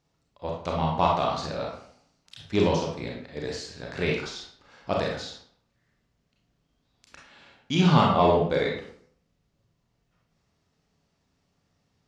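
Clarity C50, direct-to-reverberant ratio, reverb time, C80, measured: 3.0 dB, -2.0 dB, 0.60 s, 7.5 dB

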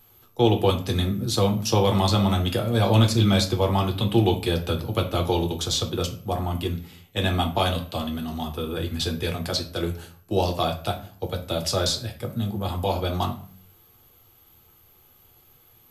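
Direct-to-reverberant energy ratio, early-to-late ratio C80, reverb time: 3.0 dB, 16.0 dB, 0.45 s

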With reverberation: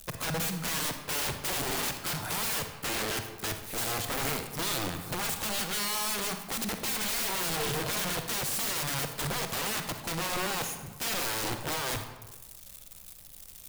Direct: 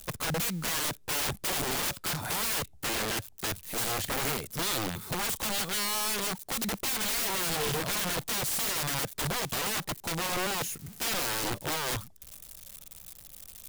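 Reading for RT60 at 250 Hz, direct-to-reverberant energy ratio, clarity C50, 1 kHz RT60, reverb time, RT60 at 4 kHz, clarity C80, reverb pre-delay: 1.2 s, 6.0 dB, 7.5 dB, 1.1 s, 1.2 s, 0.80 s, 9.5 dB, 36 ms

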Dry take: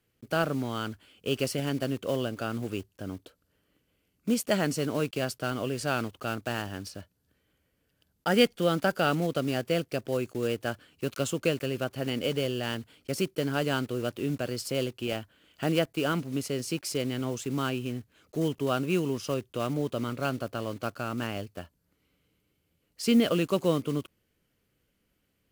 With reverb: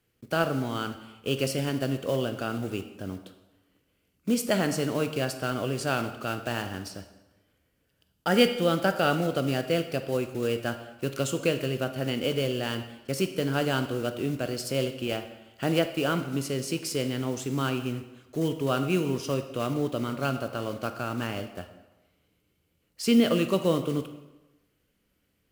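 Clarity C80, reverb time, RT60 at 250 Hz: 12.0 dB, 1.1 s, 1.0 s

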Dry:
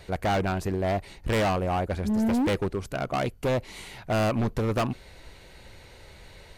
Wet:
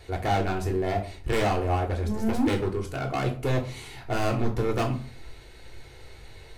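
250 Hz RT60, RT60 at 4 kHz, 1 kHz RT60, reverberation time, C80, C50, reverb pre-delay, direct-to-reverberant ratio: 0.55 s, 0.30 s, 0.40 s, 0.40 s, 16.0 dB, 11.0 dB, 3 ms, 1.5 dB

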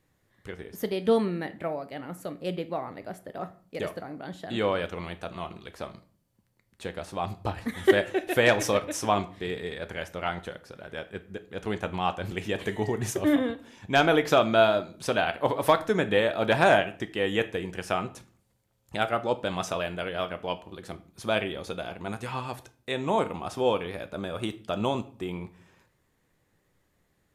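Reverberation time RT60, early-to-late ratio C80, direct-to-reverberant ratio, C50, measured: 0.45 s, 20.5 dB, 10.0 dB, 16.5 dB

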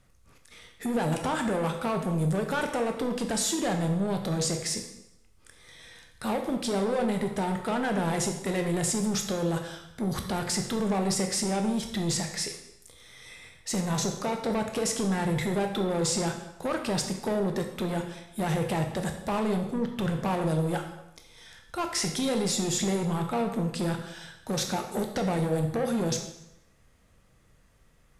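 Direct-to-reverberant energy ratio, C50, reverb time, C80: 4.0 dB, 7.5 dB, 0.80 s, 9.5 dB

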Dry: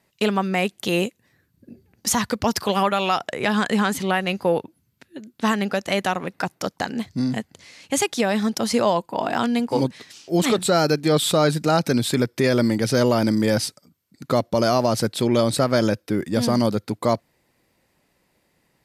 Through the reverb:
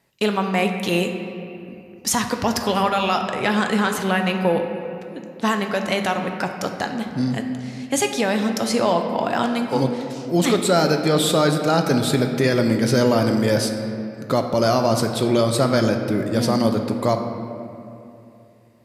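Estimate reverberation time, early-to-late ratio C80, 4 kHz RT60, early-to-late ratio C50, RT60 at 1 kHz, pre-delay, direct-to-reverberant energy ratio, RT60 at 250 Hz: 2.8 s, 7.0 dB, 1.6 s, 6.0 dB, 2.6 s, 6 ms, 4.0 dB, 3.2 s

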